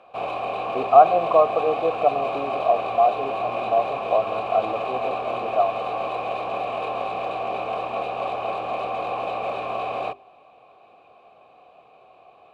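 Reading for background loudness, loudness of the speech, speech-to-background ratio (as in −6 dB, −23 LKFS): −28.0 LKFS, −22.5 LKFS, 5.5 dB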